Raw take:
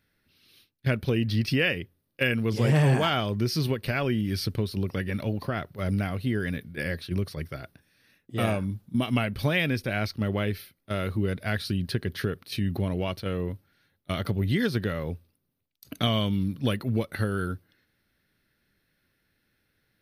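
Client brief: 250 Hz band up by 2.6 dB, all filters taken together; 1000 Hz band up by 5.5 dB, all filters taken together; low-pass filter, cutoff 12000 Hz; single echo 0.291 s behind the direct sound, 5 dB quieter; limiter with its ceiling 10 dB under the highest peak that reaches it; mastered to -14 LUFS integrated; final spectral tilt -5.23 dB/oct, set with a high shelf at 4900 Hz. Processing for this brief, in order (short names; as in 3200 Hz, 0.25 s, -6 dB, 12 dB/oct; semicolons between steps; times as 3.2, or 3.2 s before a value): LPF 12000 Hz; bell 250 Hz +3 dB; bell 1000 Hz +7.5 dB; high shelf 4900 Hz +4 dB; limiter -18 dBFS; echo 0.291 s -5 dB; gain +14 dB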